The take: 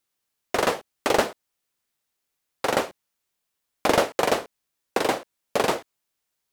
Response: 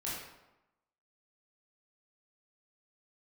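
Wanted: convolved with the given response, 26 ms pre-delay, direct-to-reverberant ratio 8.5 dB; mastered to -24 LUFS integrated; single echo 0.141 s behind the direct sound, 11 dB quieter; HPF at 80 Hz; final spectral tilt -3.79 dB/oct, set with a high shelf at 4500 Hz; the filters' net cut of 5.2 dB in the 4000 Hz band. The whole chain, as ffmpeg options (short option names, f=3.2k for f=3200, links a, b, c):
-filter_complex "[0:a]highpass=80,equalizer=f=4k:t=o:g=-5.5,highshelf=f=4.5k:g=-3,aecho=1:1:141:0.282,asplit=2[a][b];[1:a]atrim=start_sample=2205,adelay=26[c];[b][c]afir=irnorm=-1:irlink=0,volume=-11dB[d];[a][d]amix=inputs=2:normalize=0,volume=2dB"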